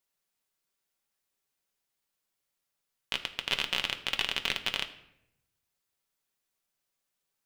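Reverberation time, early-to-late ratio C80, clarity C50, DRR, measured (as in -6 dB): 0.80 s, 15.5 dB, 13.0 dB, 5.5 dB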